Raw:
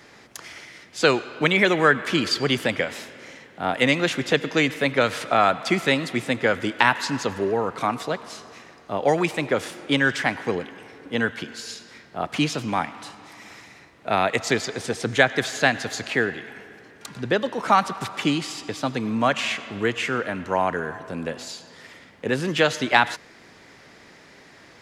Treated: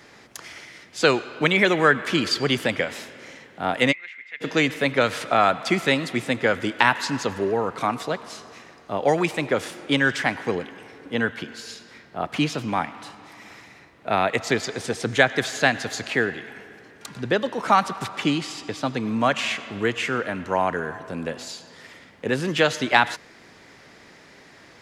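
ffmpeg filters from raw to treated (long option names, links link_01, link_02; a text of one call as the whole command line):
ffmpeg -i in.wav -filter_complex "[0:a]asplit=3[link_01][link_02][link_03];[link_01]afade=type=out:start_time=3.91:duration=0.02[link_04];[link_02]bandpass=frequency=2100:width_type=q:width=13,afade=type=in:start_time=3.91:duration=0.02,afade=type=out:start_time=4.4:duration=0.02[link_05];[link_03]afade=type=in:start_time=4.4:duration=0.02[link_06];[link_04][link_05][link_06]amix=inputs=3:normalize=0,asettb=1/sr,asplit=3[link_07][link_08][link_09];[link_07]atrim=end=11.134[link_10];[link_08]atrim=start=11.13:end=14.63,asetpts=PTS-STARTPTS,afade=type=in:duration=0.004:curve=qsin,afade=type=out:start_time=3.496:duration=0.004:curve=qsin,equalizer=frequency=7500:width_type=o:width=1.7:gain=-4[link_11];[link_09]atrim=start=14.626[link_12];[link_10][link_11]acrossfade=duration=0.004:curve1=hsin:curve2=qsin[link_13];[link_13][link_12]acrossfade=duration=0.004:curve1=qsin:curve2=hsin,asettb=1/sr,asplit=3[link_14][link_15][link_16];[link_14]atrim=end=18.064[link_17];[link_15]atrim=start=18.06:end=19.07,asetpts=PTS-STARTPTS,afade=type=in:duration=0.004:curve=qsin,afade=type=out:start_time=1.006:duration=0.004:curve=qsin,highshelf=frequency=9700:gain=-7[link_18];[link_16]atrim=start=19.066[link_19];[link_17][link_18]acrossfade=duration=0.004:curve1=hsin:curve2=qsin[link_20];[link_20][link_19]acrossfade=duration=0.004:curve1=qsin:curve2=hsin" out.wav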